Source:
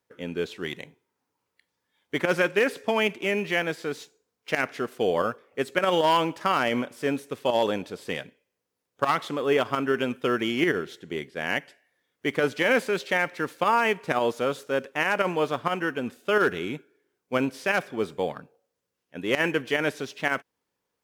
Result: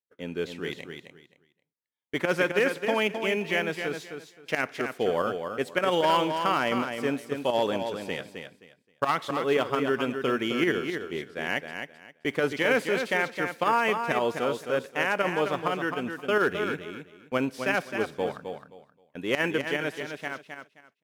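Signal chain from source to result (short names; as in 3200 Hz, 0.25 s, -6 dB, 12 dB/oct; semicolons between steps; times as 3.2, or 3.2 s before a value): ending faded out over 1.66 s; gate -48 dBFS, range -23 dB; on a send: feedback echo 0.263 s, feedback 22%, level -7 dB; on the sum: gain -2 dB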